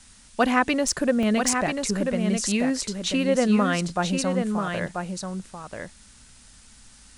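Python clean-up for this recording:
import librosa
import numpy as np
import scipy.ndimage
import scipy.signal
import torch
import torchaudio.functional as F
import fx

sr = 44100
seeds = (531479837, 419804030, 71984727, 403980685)

y = fx.fix_declip(x, sr, threshold_db=-8.0)
y = fx.fix_interpolate(y, sr, at_s=(0.92, 1.23), length_ms=1.1)
y = fx.noise_reduce(y, sr, print_start_s=5.94, print_end_s=6.44, reduce_db=19.0)
y = fx.fix_echo_inverse(y, sr, delay_ms=987, level_db=-5.5)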